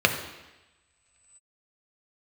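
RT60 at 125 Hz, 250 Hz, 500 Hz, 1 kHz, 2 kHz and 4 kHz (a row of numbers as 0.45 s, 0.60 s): 1.1 s, 1.0 s, 1.0 s, 1.2 s, 1.6 s, 1.5 s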